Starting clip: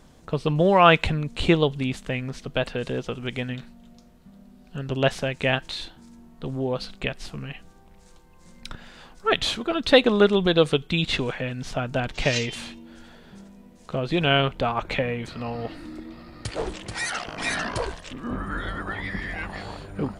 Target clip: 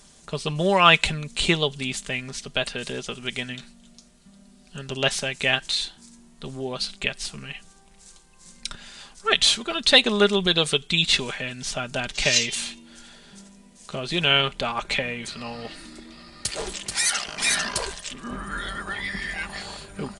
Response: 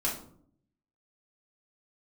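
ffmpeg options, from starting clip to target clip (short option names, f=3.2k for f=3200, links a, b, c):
-af "aecho=1:1:5:0.42,crystalizer=i=7:c=0,aresample=22050,aresample=44100,volume=-5.5dB"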